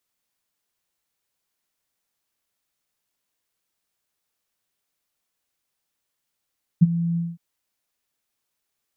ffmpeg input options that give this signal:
-f lavfi -i "aevalsrc='0.473*sin(2*PI*169*t)':d=0.564:s=44100,afade=t=in:d=0.018,afade=t=out:st=0.018:d=0.028:silence=0.2,afade=t=out:st=0.36:d=0.204"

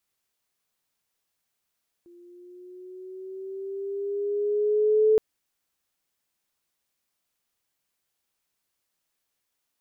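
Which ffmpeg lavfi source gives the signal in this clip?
-f lavfi -i "aevalsrc='pow(10,(-15+33.5*(t/3.12-1))/20)*sin(2*PI*346*3.12/(4*log(2)/12)*(exp(4*log(2)/12*t/3.12)-1))':d=3.12:s=44100"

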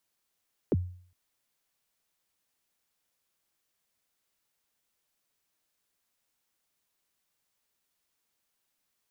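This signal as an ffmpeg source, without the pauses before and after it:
-f lavfi -i "aevalsrc='0.106*pow(10,-3*t/0.52)*sin(2*PI*(510*0.033/log(90/510)*(exp(log(90/510)*min(t,0.033)/0.033)-1)+90*max(t-0.033,0)))':d=0.41:s=44100"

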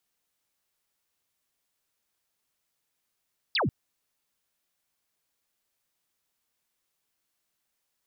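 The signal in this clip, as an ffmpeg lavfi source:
-f lavfi -i "aevalsrc='0.0708*clip(t/0.002,0,1)*clip((0.14-t)/0.002,0,1)*sin(2*PI*5200*0.14/log(89/5200)*(exp(log(89/5200)*t/0.14)-1))':d=0.14:s=44100"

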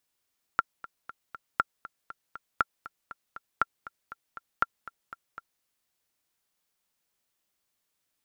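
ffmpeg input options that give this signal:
-f lavfi -i "aevalsrc='pow(10,(-9-18*gte(mod(t,4*60/238),60/238))/20)*sin(2*PI*1370*mod(t,60/238))*exp(-6.91*mod(t,60/238)/0.03)':d=5.04:s=44100"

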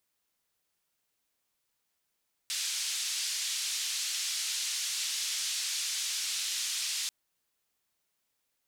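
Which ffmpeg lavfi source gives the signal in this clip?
-f lavfi -i "anoisesrc=c=white:d=4.59:r=44100:seed=1,highpass=f=3300,lowpass=f=6500,volume=-20.6dB"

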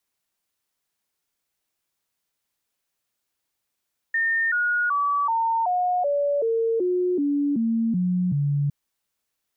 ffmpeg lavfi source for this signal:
-f lavfi -i "aevalsrc='0.106*clip(min(mod(t,0.38),0.38-mod(t,0.38))/0.005,0,1)*sin(2*PI*1820*pow(2,-floor(t/0.38)/3)*mod(t,0.38))':d=4.56:s=44100"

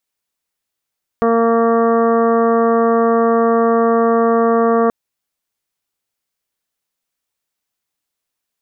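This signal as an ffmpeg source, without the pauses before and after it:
-f lavfi -i "aevalsrc='0.15*sin(2*PI*230*t)+0.211*sin(2*PI*460*t)+0.119*sin(2*PI*690*t)+0.0376*sin(2*PI*920*t)+0.106*sin(2*PI*1150*t)+0.0316*sin(2*PI*1380*t)+0.0168*sin(2*PI*1610*t)+0.0168*sin(2*PI*1840*t)':d=3.68:s=44100"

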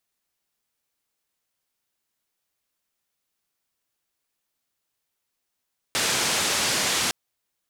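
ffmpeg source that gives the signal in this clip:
-f lavfi -i "anoisesrc=c=white:d=1.16:r=44100:seed=1,highpass=f=95,lowpass=f=7300,volume=-14.5dB"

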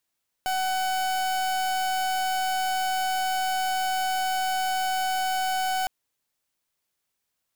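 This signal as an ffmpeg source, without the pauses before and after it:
-f lavfi -i "aevalsrc='0.0501*(2*lt(mod(751*t,1),0.38)-1)':d=5.41:s=44100"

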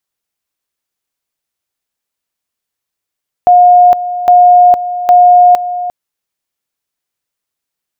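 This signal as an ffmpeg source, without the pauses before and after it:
-f lavfi -i "aevalsrc='pow(10,(-1.5-13*gte(mod(t,0.81),0.46))/20)*sin(2*PI*715*t)':d=2.43:s=44100"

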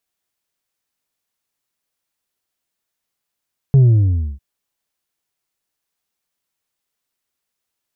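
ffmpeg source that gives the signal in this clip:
-f lavfi -i "aevalsrc='0.447*clip((0.65-t)/0.61,0,1)*tanh(1.5*sin(2*PI*140*0.65/log(65/140)*(exp(log(65/140)*t/0.65)-1)))/tanh(1.5)':d=0.65:s=44100"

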